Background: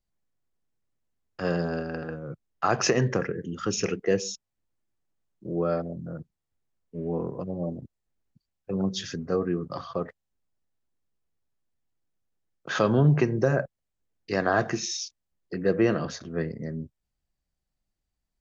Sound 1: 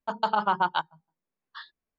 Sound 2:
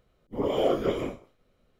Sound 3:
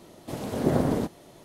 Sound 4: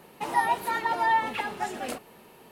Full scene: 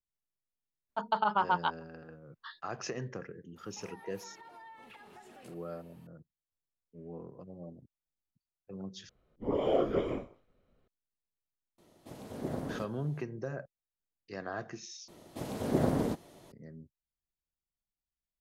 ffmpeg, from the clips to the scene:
ffmpeg -i bed.wav -i cue0.wav -i cue1.wav -i cue2.wav -i cue3.wav -filter_complex "[3:a]asplit=2[link_01][link_02];[0:a]volume=-15.5dB[link_03];[1:a]acrossover=split=4100[link_04][link_05];[link_05]acompressor=threshold=-57dB:ratio=4:attack=1:release=60[link_06];[link_04][link_06]amix=inputs=2:normalize=0[link_07];[4:a]acompressor=threshold=-37dB:ratio=6:attack=3.2:release=140:knee=1:detection=peak[link_08];[2:a]aemphasis=mode=reproduction:type=75kf[link_09];[link_03]asplit=3[link_10][link_11][link_12];[link_10]atrim=end=9.094[link_13];[link_09]atrim=end=1.79,asetpts=PTS-STARTPTS,volume=-3.5dB[link_14];[link_11]atrim=start=10.876:end=15.084[link_15];[link_02]atrim=end=1.44,asetpts=PTS-STARTPTS,volume=-5dB[link_16];[link_12]atrim=start=16.516[link_17];[link_07]atrim=end=1.98,asetpts=PTS-STARTPTS,volume=-4dB,afade=type=in:duration=0.004:curve=hsin,afade=type=out:start_time=1.976:duration=0.004:curve=hsin,adelay=890[link_18];[link_08]atrim=end=2.51,asetpts=PTS-STARTPTS,volume=-13dB,afade=type=in:duration=0.004:curve=hsin,afade=type=out:start_time=2.506:duration=0.004:curve=hsin,adelay=3560[link_19];[link_01]atrim=end=1.44,asetpts=PTS-STARTPTS,volume=-13.5dB,afade=type=in:duration=0.004:curve=hsin,afade=type=out:start_time=1.436:duration=0.004:curve=hsin,adelay=519498S[link_20];[link_13][link_14]acrossfade=duration=0.004:curve1=hsin:curve2=hsin[link_21];[link_21][link_15]acrossfade=duration=0.004:curve1=hsin:curve2=hsin[link_22];[link_22][link_16]acrossfade=duration=0.004:curve1=hsin:curve2=hsin[link_23];[link_23][link_17]acrossfade=duration=0.004:curve1=hsin:curve2=hsin[link_24];[link_24][link_18][link_19][link_20]amix=inputs=4:normalize=0" out.wav

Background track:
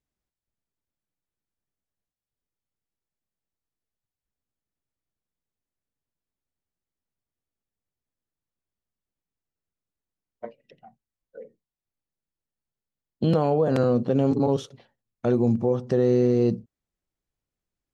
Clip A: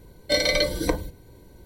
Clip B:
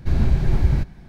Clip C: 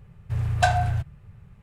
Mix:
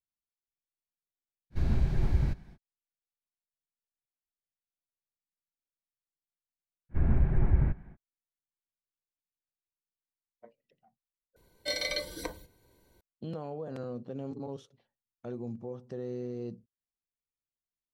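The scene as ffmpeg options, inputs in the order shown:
ffmpeg -i bed.wav -i cue0.wav -i cue1.wav -filter_complex "[2:a]asplit=2[link_01][link_02];[0:a]volume=-17.5dB[link_03];[link_02]lowpass=frequency=2100:width=0.5412,lowpass=frequency=2100:width=1.3066[link_04];[1:a]lowshelf=frequency=470:gain=-9.5[link_05];[link_03]asplit=2[link_06][link_07];[link_06]atrim=end=11.364[link_08];[link_05]atrim=end=1.65,asetpts=PTS-STARTPTS,volume=-9.5dB[link_09];[link_07]atrim=start=13.006[link_10];[link_01]atrim=end=1.08,asetpts=PTS-STARTPTS,volume=-9dB,afade=type=in:duration=0.05,afade=type=out:start_time=1.03:duration=0.05,adelay=1500[link_11];[link_04]atrim=end=1.08,asetpts=PTS-STARTPTS,volume=-7dB,afade=type=in:duration=0.05,afade=type=out:start_time=1.03:duration=0.05,adelay=6890[link_12];[link_08][link_09]acrossfade=duration=0.004:curve1=hsin:curve2=hsin[link_13];[link_13][link_10]acrossfade=duration=0.004:curve1=hsin:curve2=hsin[link_14];[link_14][link_11][link_12]amix=inputs=3:normalize=0" out.wav

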